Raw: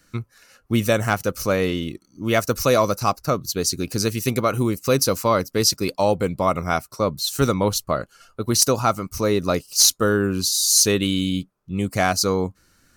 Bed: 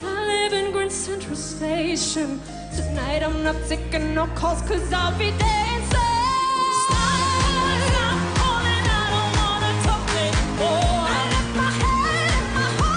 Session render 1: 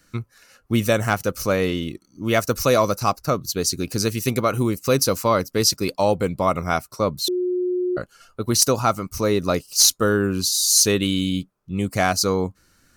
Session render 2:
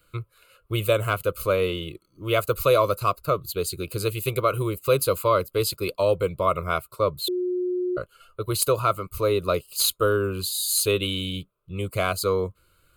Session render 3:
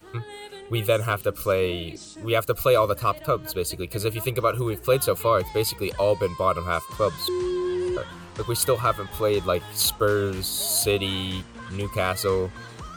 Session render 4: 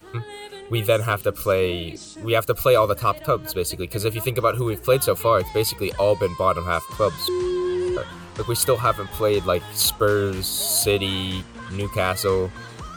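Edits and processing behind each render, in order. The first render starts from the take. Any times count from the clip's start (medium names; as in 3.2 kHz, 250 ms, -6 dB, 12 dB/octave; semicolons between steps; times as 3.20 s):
7.28–7.97 s: bleep 361 Hz -19.5 dBFS
static phaser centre 1.2 kHz, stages 8
add bed -19 dB
trim +2.5 dB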